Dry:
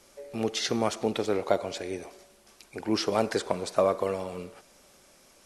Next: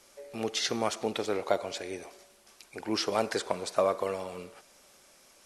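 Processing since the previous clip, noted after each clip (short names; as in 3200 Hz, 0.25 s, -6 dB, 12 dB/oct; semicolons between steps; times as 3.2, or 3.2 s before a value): low shelf 440 Hz -7 dB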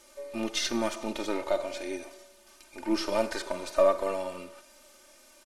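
half-wave gain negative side -3 dB; comb 3.3 ms, depth 65%; harmonic-percussive split percussive -11 dB; gain +4.5 dB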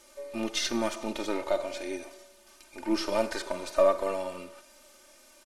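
nothing audible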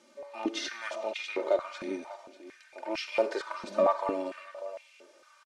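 air absorption 81 m; echo 0.593 s -14.5 dB; stepped high-pass 4.4 Hz 210–2400 Hz; gain -3.5 dB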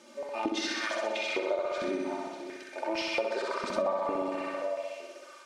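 on a send: flutter echo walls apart 10.9 m, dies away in 1.1 s; on the sum: compressor 4:1, threshold -35 dBFS, peak gain reduction 15 dB; gain +6 dB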